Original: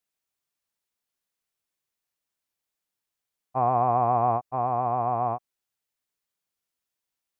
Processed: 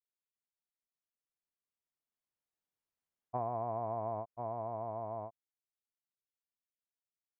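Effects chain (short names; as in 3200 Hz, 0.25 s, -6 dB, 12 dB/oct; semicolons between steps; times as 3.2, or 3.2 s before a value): Doppler pass-by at 2.93, 30 m/s, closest 21 m; high shelf 2100 Hz -11.5 dB; compressor 5:1, threshold -30 dBFS, peak gain reduction 8 dB; gain -3.5 dB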